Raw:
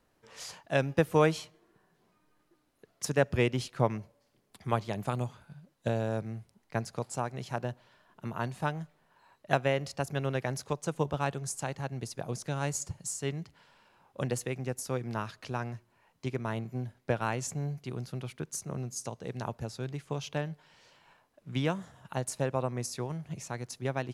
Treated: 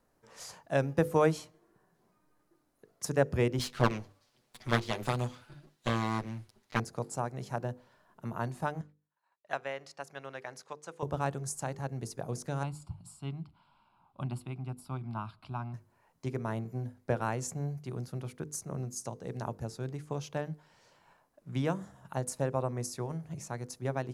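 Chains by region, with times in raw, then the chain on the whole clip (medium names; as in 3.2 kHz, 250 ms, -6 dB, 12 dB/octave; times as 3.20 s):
3.59–6.80 s: comb filter that takes the minimum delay 8.1 ms + peaking EQ 3.4 kHz +13.5 dB 2 oct
8.81–11.03 s: expander -55 dBFS + band-pass filter 2.9 kHz, Q 0.52 + treble shelf 3.7 kHz -5 dB
12.63–15.74 s: distance through air 58 m + static phaser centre 1.8 kHz, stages 6
whole clip: peaking EQ 3 kHz -8 dB 1.4 oct; hum notches 50/100/150/200/250/300/350/400/450/500 Hz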